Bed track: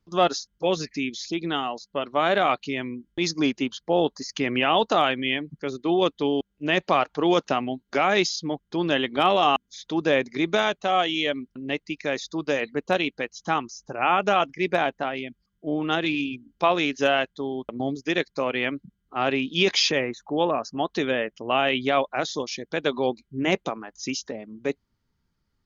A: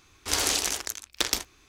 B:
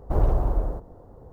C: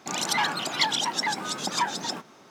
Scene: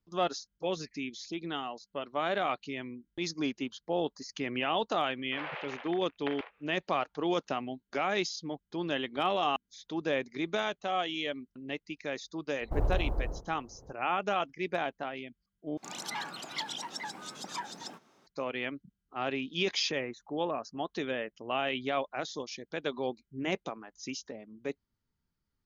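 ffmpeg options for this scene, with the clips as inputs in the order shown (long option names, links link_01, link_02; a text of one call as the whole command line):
ffmpeg -i bed.wav -i cue0.wav -i cue1.wav -i cue2.wav -filter_complex "[0:a]volume=-9.5dB[link_01];[1:a]highpass=frequency=410:width_type=q:width=0.5412,highpass=frequency=410:width_type=q:width=1.307,lowpass=frequency=2600:width_type=q:width=0.5176,lowpass=frequency=2600:width_type=q:width=0.7071,lowpass=frequency=2600:width_type=q:width=1.932,afreqshift=92[link_02];[link_01]asplit=2[link_03][link_04];[link_03]atrim=end=15.774[link_05];[3:a]atrim=end=2.5,asetpts=PTS-STARTPTS,volume=-12.5dB[link_06];[link_04]atrim=start=18.266[link_07];[link_02]atrim=end=1.68,asetpts=PTS-STARTPTS,volume=-7dB,afade=type=in:duration=0.004:curve=hsin,afade=type=out:start_time=1.676:duration=0.004:curve=hsin,adelay=5060[link_08];[2:a]atrim=end=1.32,asetpts=PTS-STARTPTS,volume=-8.5dB,afade=type=in:duration=0.004:curve=hsin,afade=type=out:start_time=1.316:duration=0.004:curve=hsin,adelay=12610[link_09];[link_05][link_06]acrossfade=duration=0.004:curve1=hsin:curve2=hsin[link_10];[link_10][link_07]acrossfade=duration=0.004:curve1=hsin:curve2=hsin[link_11];[link_11][link_08][link_09]amix=inputs=3:normalize=0" out.wav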